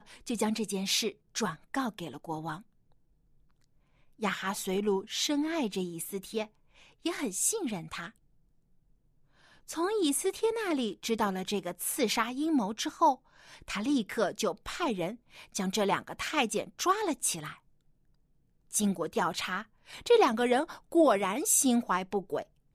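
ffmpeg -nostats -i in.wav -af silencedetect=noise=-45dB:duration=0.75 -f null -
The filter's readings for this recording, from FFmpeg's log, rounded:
silence_start: 2.61
silence_end: 4.21 | silence_duration: 1.61
silence_start: 8.10
silence_end: 9.68 | silence_duration: 1.59
silence_start: 17.55
silence_end: 18.71 | silence_duration: 1.16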